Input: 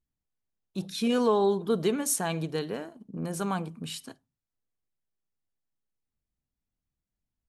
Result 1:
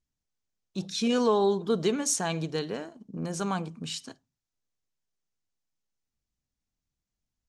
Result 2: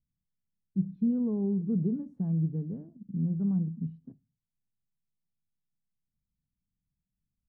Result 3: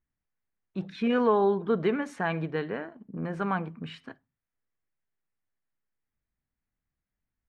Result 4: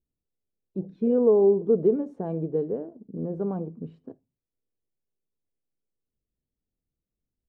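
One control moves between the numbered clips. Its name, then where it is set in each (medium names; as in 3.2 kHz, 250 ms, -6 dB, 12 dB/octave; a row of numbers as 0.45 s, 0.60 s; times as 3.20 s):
resonant low-pass, frequency: 6.4 kHz, 180 Hz, 1.9 kHz, 460 Hz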